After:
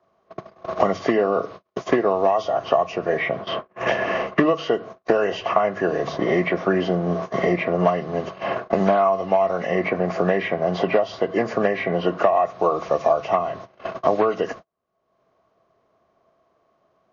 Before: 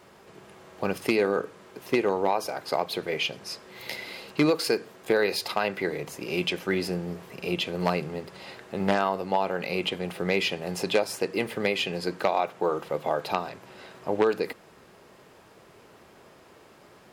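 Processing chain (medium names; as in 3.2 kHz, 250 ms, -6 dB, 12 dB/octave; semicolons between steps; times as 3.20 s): knee-point frequency compression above 1.2 kHz 1.5:1; hum notches 50/100/150 Hz; small resonant body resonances 670/1100 Hz, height 16 dB, ringing for 35 ms; gate -38 dBFS, range -48 dB; bass shelf 360 Hz +5.5 dB; three bands compressed up and down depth 100%; trim -1 dB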